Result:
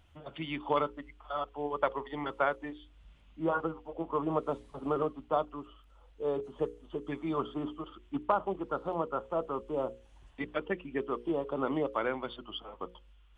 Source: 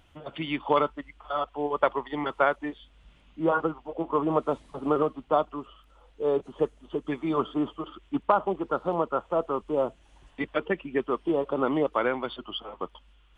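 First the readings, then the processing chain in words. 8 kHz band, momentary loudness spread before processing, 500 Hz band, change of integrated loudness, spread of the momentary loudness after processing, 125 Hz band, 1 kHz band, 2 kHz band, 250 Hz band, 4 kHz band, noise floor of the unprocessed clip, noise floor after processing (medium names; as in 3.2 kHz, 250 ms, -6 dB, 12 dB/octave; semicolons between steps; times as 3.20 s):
no reading, 11 LU, -6.5 dB, -6.0 dB, 11 LU, -4.0 dB, -6.0 dB, -6.0 dB, -6.5 dB, -6.0 dB, -59 dBFS, -60 dBFS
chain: peaking EQ 66 Hz +7.5 dB 1.5 oct; hum notches 60/120/180/240/300/360/420/480/540 Hz; trim -6 dB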